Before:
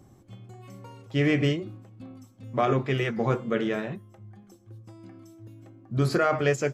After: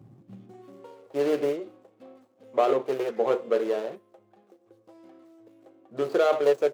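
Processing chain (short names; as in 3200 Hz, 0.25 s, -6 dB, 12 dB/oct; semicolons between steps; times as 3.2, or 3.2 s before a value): median filter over 25 samples; high-pass sweep 120 Hz -> 480 Hz, 0.02–0.97; gain -1 dB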